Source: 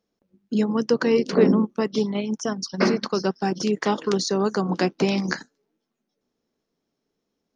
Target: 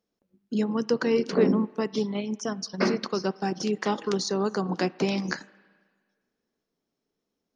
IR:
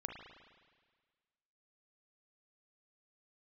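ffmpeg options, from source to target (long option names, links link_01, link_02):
-filter_complex "[0:a]asplit=2[link_01][link_02];[1:a]atrim=start_sample=2205,lowshelf=frequency=200:gain=-10.5[link_03];[link_02][link_03]afir=irnorm=-1:irlink=0,volume=-13dB[link_04];[link_01][link_04]amix=inputs=2:normalize=0,volume=-5dB"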